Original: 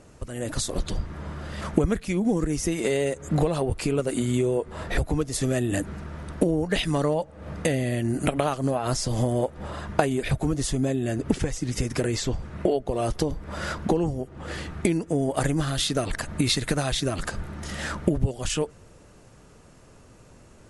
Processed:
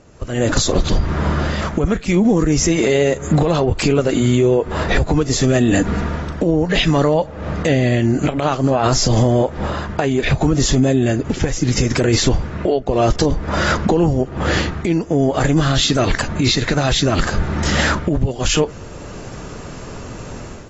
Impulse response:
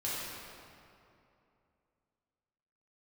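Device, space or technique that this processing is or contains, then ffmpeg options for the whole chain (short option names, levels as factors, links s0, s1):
low-bitrate web radio: -filter_complex "[0:a]asettb=1/sr,asplit=3[s0][s1][s2];[s0]atrim=end=5.604[s3];[s1]atrim=start=5.6:end=6.2,asetpts=PTS-STARTPTS,afade=t=in:d=0.004:c=qsin,afade=t=out:st=0.596:d=0.004:c=qsin,aecho=1:1:4.2:0.36,atrim=end_sample=26460[s4];[s2]atrim=start=6.196[s5];[s3][s4]acrossfade=d=0.004:c1=hsin:c2=qsin[s6];[s6][s5]acrossfade=d=0.004:c1=qsin:c2=hsin,dynaudnorm=f=130:g=5:m=6.68,alimiter=limit=0.335:level=0:latency=1:release=73,volume=1.41" -ar 22050 -c:a aac -b:a 24k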